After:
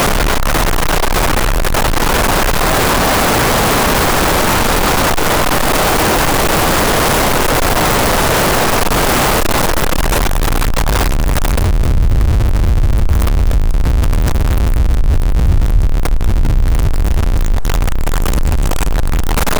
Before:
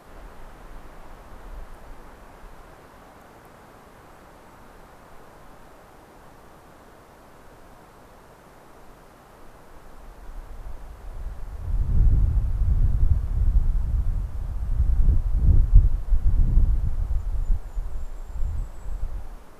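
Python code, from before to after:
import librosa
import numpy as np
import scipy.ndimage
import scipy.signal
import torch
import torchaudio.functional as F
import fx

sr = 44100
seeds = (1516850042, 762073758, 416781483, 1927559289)

y = x + 0.5 * 10.0 ** (-17.5 / 20.0) * np.sign(x)
y = fx.env_flatten(y, sr, amount_pct=70)
y = y * 10.0 ** (-1.0 / 20.0)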